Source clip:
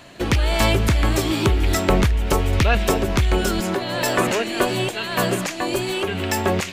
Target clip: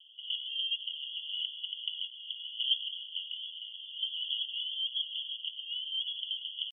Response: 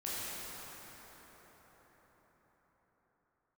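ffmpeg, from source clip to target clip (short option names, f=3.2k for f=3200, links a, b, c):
-af "asetrate=52444,aresample=44100,atempo=0.840896,asuperpass=centerf=3100:order=20:qfactor=5.3"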